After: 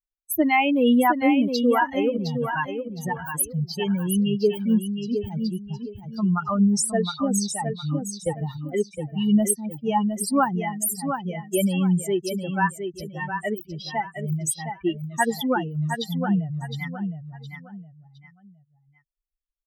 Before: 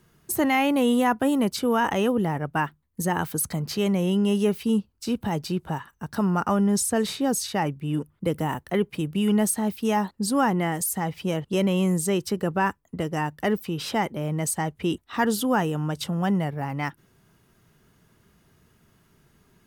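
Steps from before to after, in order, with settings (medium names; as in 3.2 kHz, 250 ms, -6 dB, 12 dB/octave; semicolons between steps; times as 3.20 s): expander on every frequency bin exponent 3; on a send: feedback delay 713 ms, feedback 28%, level -7 dB; on the sum: trim +7 dB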